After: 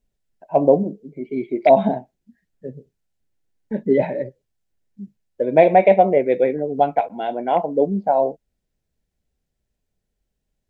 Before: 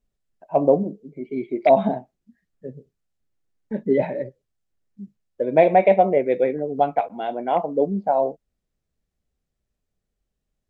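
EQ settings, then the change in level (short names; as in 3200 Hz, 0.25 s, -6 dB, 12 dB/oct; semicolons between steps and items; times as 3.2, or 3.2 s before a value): notch 1200 Hz, Q 5.8; +2.5 dB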